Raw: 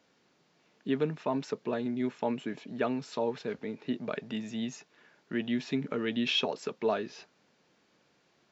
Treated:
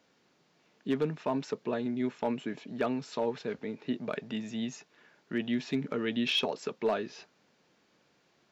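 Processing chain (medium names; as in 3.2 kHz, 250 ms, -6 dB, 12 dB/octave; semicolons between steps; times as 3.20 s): hard clipper -21 dBFS, distortion -25 dB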